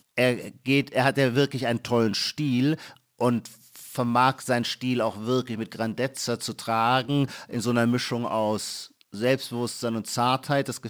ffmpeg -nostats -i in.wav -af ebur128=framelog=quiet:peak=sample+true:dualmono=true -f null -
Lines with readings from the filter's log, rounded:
Integrated loudness:
  I:         -22.5 LUFS
  Threshold: -32.8 LUFS
Loudness range:
  LRA:         2.0 LU
  Threshold: -43.0 LUFS
  LRA low:   -23.7 LUFS
  LRA high:  -21.8 LUFS
Sample peak:
  Peak:       -7.3 dBFS
True peak:
  Peak:       -7.3 dBFS